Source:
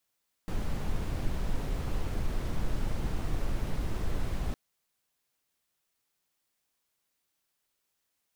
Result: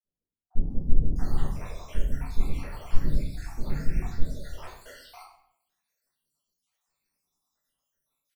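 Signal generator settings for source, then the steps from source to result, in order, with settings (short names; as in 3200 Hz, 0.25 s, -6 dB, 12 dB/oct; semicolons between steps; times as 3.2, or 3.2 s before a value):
noise brown, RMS -29 dBFS 4.06 s
random spectral dropouts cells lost 77%; bands offset in time lows, highs 0.68 s, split 480 Hz; shoebox room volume 150 m³, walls mixed, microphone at 1.7 m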